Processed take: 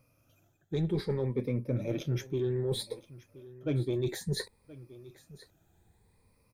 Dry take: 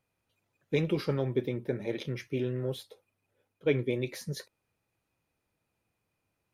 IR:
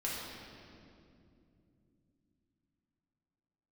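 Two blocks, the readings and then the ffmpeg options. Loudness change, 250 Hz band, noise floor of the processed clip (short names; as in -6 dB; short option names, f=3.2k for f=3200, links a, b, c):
-0.5 dB, -0.5 dB, -70 dBFS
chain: -filter_complex "[0:a]afftfilt=real='re*pow(10,12/40*sin(2*PI*(0.92*log(max(b,1)*sr/1024/100)/log(2)-(0.6)*(pts-256)/sr)))':imag='im*pow(10,12/40*sin(2*PI*(0.92*log(max(b,1)*sr/1024/100)/log(2)-(0.6)*(pts-256)/sr)))':win_size=1024:overlap=0.75,asplit=2[a][b];[b]asoftclip=type=tanh:threshold=-26dB,volume=-5dB[c];[a][c]amix=inputs=2:normalize=0,lowshelf=f=96:g=11,areverse,acompressor=threshold=-36dB:ratio=4,areverse,equalizer=f=2.1k:w=0.51:g=-5,bandreject=f=2.9k:w=7.7,aecho=1:1:1024:0.112,volume=6dB"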